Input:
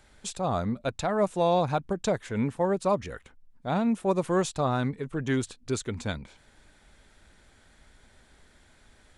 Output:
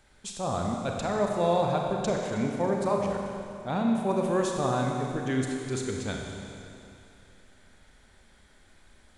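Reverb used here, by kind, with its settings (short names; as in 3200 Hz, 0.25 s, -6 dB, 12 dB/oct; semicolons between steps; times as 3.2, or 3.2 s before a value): Schroeder reverb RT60 2.7 s, combs from 31 ms, DRR 0.5 dB; gain -3 dB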